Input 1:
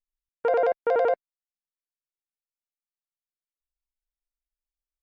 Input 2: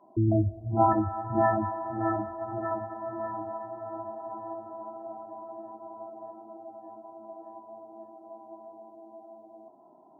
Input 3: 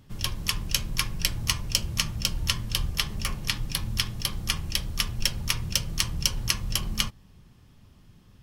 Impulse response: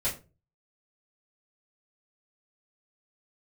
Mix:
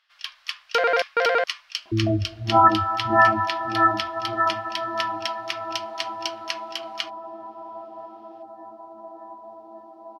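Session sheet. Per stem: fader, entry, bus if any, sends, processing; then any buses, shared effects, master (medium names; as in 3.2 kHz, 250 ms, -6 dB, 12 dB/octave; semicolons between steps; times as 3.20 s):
-1.0 dB, 0.30 s, no send, local Wiener filter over 25 samples
+2.5 dB, 1.75 s, no send, gate with hold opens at -47 dBFS; peaking EQ 160 Hz -5 dB 0.7 oct
-15.0 dB, 0.00 s, no send, elliptic high-pass 640 Hz, stop band 40 dB; treble shelf 8.4 kHz -8.5 dB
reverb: none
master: high-order bell 2.5 kHz +15 dB 2.5 oct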